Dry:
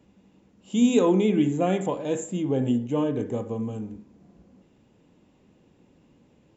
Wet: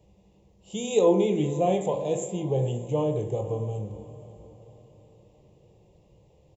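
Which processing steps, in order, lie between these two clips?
low shelf 300 Hz +7.5 dB; fixed phaser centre 610 Hz, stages 4; doubler 20 ms -13 dB; diffused feedback echo 0.534 s, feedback 46%, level -16 dB; on a send at -8.5 dB: reverb RT60 0.65 s, pre-delay 17 ms

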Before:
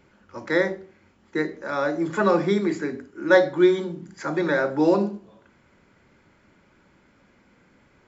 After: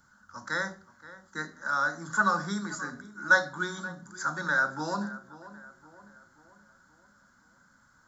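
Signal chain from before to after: EQ curve 250 Hz 0 dB, 360 Hz -16 dB, 1500 Hz +13 dB, 2400 Hz -16 dB, 3800 Hz +4 dB, 6400 Hz +14 dB; on a send: tape echo 0.527 s, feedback 55%, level -15.5 dB, low-pass 2000 Hz; on the sum: gain -8 dB

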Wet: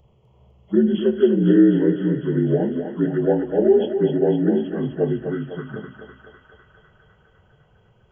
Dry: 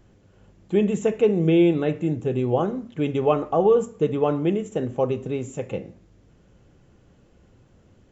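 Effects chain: inharmonic rescaling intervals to 76%; envelope phaser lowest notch 270 Hz, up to 1200 Hz, full sweep at -20 dBFS; thinning echo 0.252 s, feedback 75%, high-pass 470 Hz, level -5 dB; gain +5 dB

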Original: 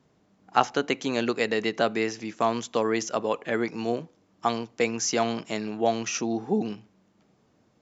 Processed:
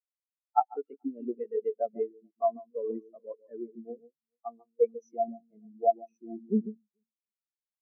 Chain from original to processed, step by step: echo with dull and thin repeats by turns 0.144 s, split 1600 Hz, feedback 63%, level -5.5 dB; spectral expander 4:1; gain -6 dB

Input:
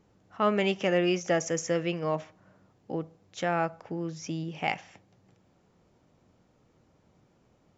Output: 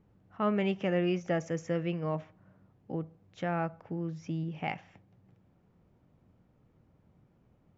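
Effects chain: tone controls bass +8 dB, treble -13 dB; gain -5.5 dB

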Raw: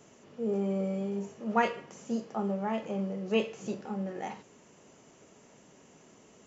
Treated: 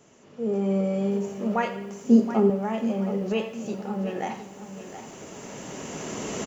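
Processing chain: recorder AGC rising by 9.4 dB/s; 2.04–2.5 small resonant body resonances 250/390 Hz, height 14 dB; on a send: feedback echo 87 ms, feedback 52%, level -15 dB; on the sum: lo-fi delay 0.72 s, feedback 35%, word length 9-bit, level -11.5 dB

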